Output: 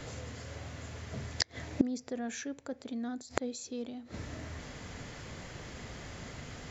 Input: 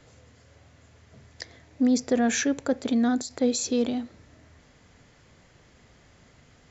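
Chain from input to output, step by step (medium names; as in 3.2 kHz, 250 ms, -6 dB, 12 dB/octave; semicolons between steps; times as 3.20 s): inverted gate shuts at -24 dBFS, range -26 dB; trim +11.5 dB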